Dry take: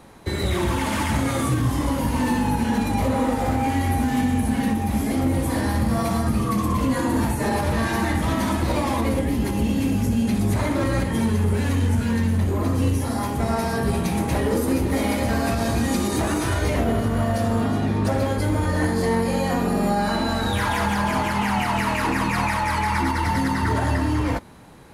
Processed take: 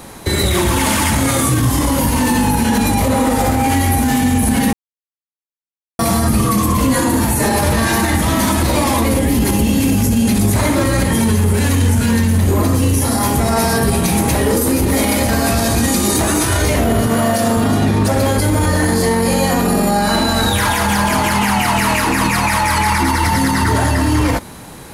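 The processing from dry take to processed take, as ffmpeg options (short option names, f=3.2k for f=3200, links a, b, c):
-filter_complex "[0:a]asettb=1/sr,asplit=3[a][b][c];[a]atrim=end=17.074[d];[b]atrim=start=17.07:end=17.57,asetpts=PTS-STARTPTS,afade=t=in:d=0.004:c=qsin,afade=t=out:st=0.496:d=0.004:c=qsin,highpass=160[e];[c]atrim=start=17.566[f];[d][e]acrossfade=d=0.004:c1=hsin:c2=qsin[g];[g][f]acrossfade=d=0.004:c1=qsin:c2=hsin,asplit=3[h][i][j];[h]atrim=end=4.73,asetpts=PTS-STARTPTS,afade=t=out:st=4.726:d=0.004:c=hsin[k];[i]atrim=start=4.73:end=5.99,asetpts=PTS-STARTPTS,volume=0[l];[j]atrim=start=5.99,asetpts=PTS-STARTPTS,afade=t=in:d=0.004:c=hsin[m];[k][l][m]concat=n=3:v=0:a=1,highshelf=f=4.9k:g=11,alimiter=level_in=16dB:limit=-1dB:release=50:level=0:latency=1,volume=-5dB"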